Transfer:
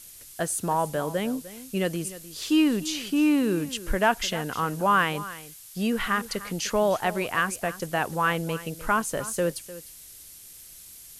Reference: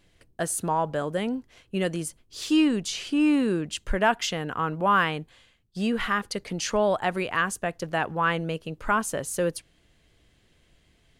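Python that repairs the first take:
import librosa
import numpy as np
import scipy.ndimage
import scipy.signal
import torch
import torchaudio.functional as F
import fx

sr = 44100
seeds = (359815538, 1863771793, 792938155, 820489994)

y = fx.noise_reduce(x, sr, print_start_s=10.38, print_end_s=10.88, reduce_db=16.0)
y = fx.fix_echo_inverse(y, sr, delay_ms=302, level_db=-16.0)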